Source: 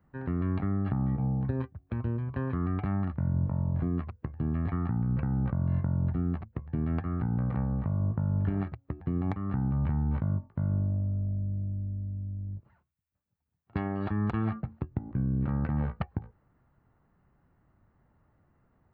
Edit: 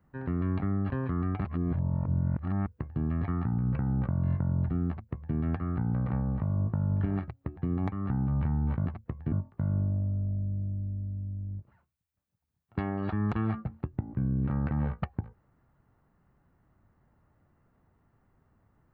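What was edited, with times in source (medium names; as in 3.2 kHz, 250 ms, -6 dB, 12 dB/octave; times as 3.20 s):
0.90–2.34 s: delete
2.89–4.10 s: reverse
6.33–6.79 s: copy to 10.30 s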